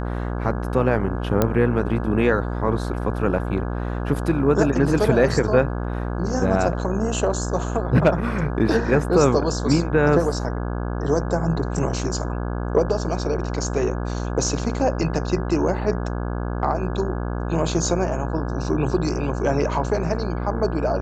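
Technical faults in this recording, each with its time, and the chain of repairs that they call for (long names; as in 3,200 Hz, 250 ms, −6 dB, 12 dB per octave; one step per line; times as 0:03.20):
mains buzz 60 Hz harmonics 28 −26 dBFS
0:01.42: click −5 dBFS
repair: click removal
hum removal 60 Hz, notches 28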